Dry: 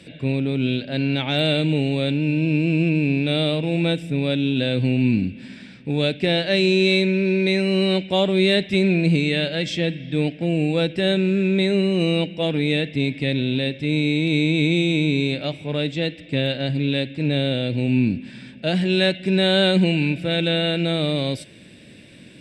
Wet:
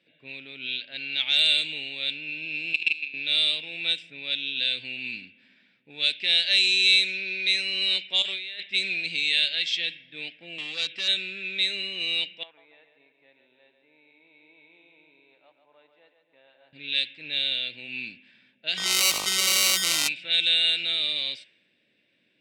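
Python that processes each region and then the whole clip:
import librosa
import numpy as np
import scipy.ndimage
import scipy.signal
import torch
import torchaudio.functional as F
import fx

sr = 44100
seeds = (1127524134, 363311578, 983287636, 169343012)

y = fx.chain(x, sr, fx.weighting(curve='D'),
    fx.level_steps(step_db=18), at=(2.73, 3.14))
y = fx.chain(y, sr, fx.low_shelf(hz=350.0, db=-10.0),
    fx.over_compress(threshold_db=-25.0, ratio=-0.5), at=(8.22, 8.63))
y = fx.chain(y, sr, fx.high_shelf(hz=4300.0, db=4.0),
    fx.clip_hard(threshold_db=-18.0),
    fx.band_squash(depth_pct=70), at=(10.58, 11.08))
y = fx.chain(y, sr, fx.bandpass_q(hz=940.0, q=3.2),
    fx.echo_split(split_hz=330.0, low_ms=230, high_ms=141, feedback_pct=52, wet_db=-6.5), at=(12.43, 16.73))
y = fx.sample_hold(y, sr, seeds[0], rate_hz=1700.0, jitter_pct=0, at=(18.76, 20.07), fade=0.02)
y = fx.dmg_buzz(y, sr, base_hz=50.0, harmonics=25, level_db=-29.0, tilt_db=-3, odd_only=False, at=(18.76, 20.07), fade=0.02)
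y = fx.env_flatten(y, sr, amount_pct=100, at=(18.76, 20.07), fade=0.02)
y = fx.weighting(y, sr, curve='D')
y = fx.env_lowpass(y, sr, base_hz=760.0, full_db=-9.0)
y = scipy.signal.lfilter([1.0, -0.97], [1.0], y)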